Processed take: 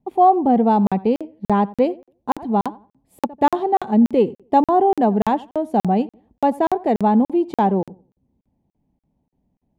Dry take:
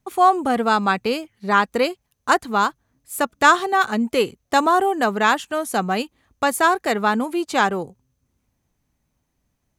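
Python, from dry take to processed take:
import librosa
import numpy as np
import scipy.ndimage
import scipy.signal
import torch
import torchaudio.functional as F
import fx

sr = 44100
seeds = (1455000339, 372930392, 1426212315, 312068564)

p1 = fx.curve_eq(x, sr, hz=(120.0, 190.0, 530.0, 870.0, 1300.0, 1900.0, 3300.0, 6500.0), db=(0, 9, 2, 4, -19, -13, -13, -25))
p2 = p1 + fx.echo_filtered(p1, sr, ms=89, feedback_pct=25, hz=2400.0, wet_db=-20.5, dry=0)
y = fx.buffer_crackle(p2, sr, first_s=0.87, period_s=0.29, block=2048, kind='zero')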